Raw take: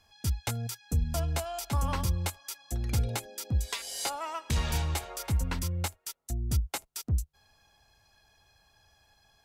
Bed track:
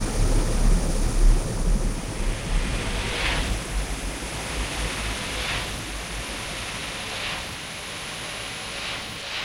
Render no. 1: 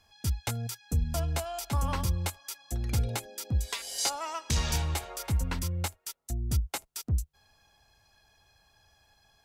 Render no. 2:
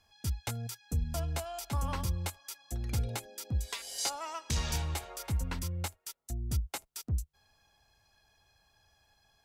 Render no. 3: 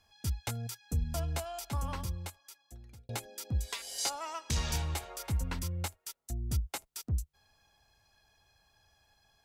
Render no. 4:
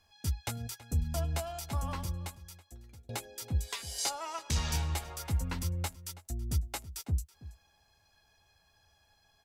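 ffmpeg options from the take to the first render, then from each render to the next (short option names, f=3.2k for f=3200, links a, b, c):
-filter_complex "[0:a]asettb=1/sr,asplit=3[a][b][c];[a]atrim=end=3.984[d];[b]atrim=start=3.98:end=4.76,asetpts=PTS-STARTPTS,afade=t=in:d=0.004:c=qsin,afade=t=out:st=0.776:d=0.004:c=qsin,equalizer=f=5.8k:w=1.3:g=8[e];[c]atrim=start=4.756[f];[d][e]acrossfade=d=0.004:c1=hsin:c2=qsin[g];[g][f]acrossfade=d=0.004:c1=qsin:c2=hsin"
-af "volume=-4dB"
-filter_complex "[0:a]asplit=2[a][b];[a]atrim=end=3.09,asetpts=PTS-STARTPTS,afade=t=out:st=1.48:d=1.61[c];[b]atrim=start=3.09,asetpts=PTS-STARTPTS,afade=t=in:d=0.004:c=hsin[d];[c][d]concat=n=2:v=0:a=1"
-filter_complex "[0:a]asplit=2[a][b];[b]adelay=12,volume=-10.5dB[c];[a][c]amix=inputs=2:normalize=0,asplit=2[d][e];[e]adelay=326.5,volume=-16dB,highshelf=f=4k:g=-7.35[f];[d][f]amix=inputs=2:normalize=0"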